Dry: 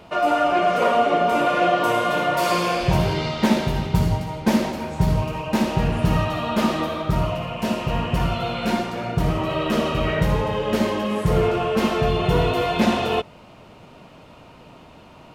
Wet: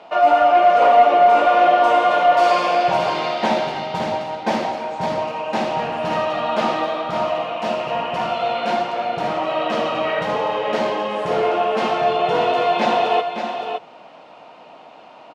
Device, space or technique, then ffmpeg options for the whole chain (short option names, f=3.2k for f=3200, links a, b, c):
intercom: -af "highpass=370,lowpass=4.9k,equalizer=f=750:t=o:w=0.47:g=8,bandreject=f=390:w=12,aecho=1:1:566:0.422,asoftclip=type=tanh:threshold=-4.5dB,volume=1.5dB"